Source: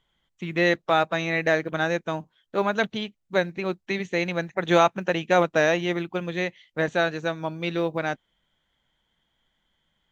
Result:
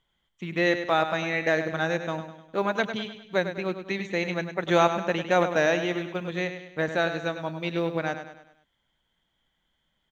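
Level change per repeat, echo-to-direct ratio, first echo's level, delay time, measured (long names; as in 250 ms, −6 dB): −6.5 dB, −8.5 dB, −9.5 dB, 101 ms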